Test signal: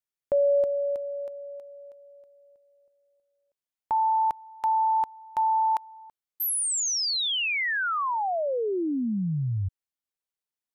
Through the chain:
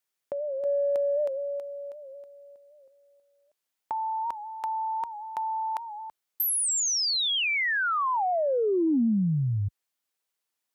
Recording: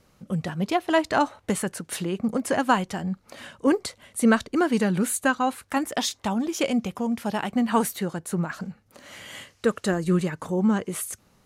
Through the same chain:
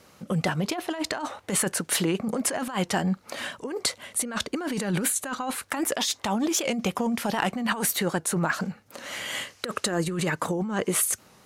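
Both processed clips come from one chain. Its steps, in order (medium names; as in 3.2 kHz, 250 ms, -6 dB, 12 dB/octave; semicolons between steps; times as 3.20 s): high-pass 53 Hz 12 dB/octave; bass shelf 210 Hz -10 dB; compressor with a negative ratio -31 dBFS, ratio -1; saturation -13 dBFS; warped record 78 rpm, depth 100 cents; trim +4.5 dB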